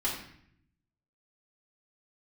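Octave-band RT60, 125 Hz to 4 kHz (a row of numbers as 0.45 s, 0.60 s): 1.2 s, 1.0 s, 0.65 s, 0.60 s, 0.70 s, 0.55 s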